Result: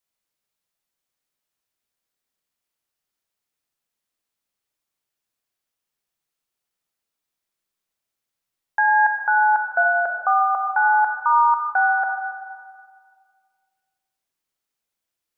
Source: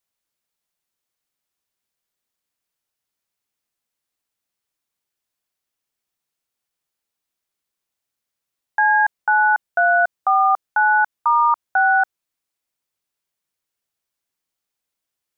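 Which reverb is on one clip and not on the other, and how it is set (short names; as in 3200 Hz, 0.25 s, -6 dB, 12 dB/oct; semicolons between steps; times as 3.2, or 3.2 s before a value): digital reverb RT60 1.9 s, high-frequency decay 0.6×, pre-delay 0 ms, DRR 3.5 dB; gain -2 dB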